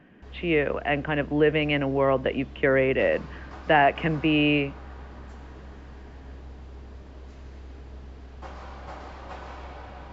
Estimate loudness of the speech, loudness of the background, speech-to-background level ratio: −24.0 LKFS, −43.5 LKFS, 19.5 dB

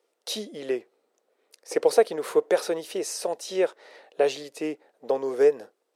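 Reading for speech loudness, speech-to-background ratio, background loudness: −26.5 LKFS, 19.5 dB, −46.0 LKFS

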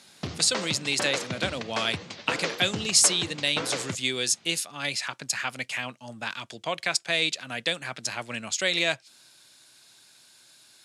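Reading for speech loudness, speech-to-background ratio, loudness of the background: −26.5 LKFS, 7.5 dB, −34.0 LKFS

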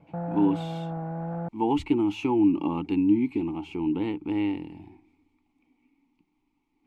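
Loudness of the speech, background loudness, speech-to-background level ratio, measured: −26.5 LKFS, −34.0 LKFS, 7.5 dB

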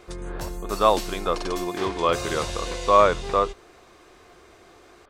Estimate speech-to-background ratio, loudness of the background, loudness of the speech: 9.5 dB, −33.0 LKFS, −23.5 LKFS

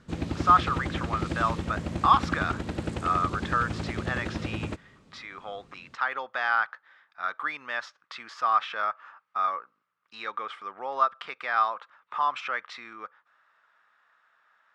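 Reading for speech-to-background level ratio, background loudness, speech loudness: 5.0 dB, −33.5 LKFS, −28.5 LKFS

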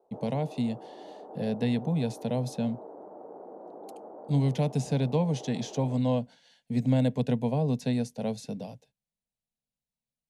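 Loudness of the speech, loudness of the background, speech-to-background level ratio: −29.5 LKFS, −46.0 LKFS, 16.5 dB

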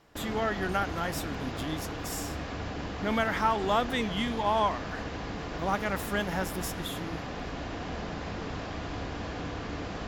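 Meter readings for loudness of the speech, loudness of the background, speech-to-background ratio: −31.5 LKFS, −37.0 LKFS, 5.5 dB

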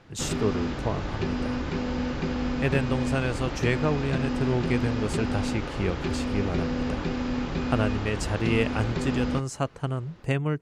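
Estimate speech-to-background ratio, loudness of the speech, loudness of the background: 0.5 dB, −29.5 LKFS, −30.0 LKFS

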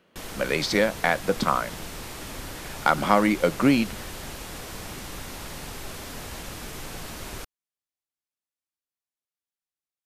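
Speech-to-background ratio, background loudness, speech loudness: 13.5 dB, −37.0 LKFS, −23.5 LKFS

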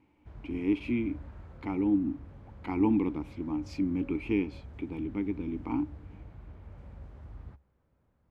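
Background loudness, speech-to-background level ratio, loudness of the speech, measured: −49.0 LKFS, 17.0 dB, −32.0 LKFS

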